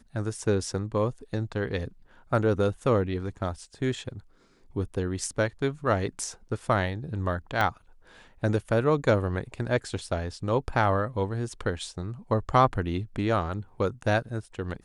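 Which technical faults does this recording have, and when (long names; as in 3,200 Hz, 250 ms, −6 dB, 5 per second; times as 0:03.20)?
0:07.61: click −13 dBFS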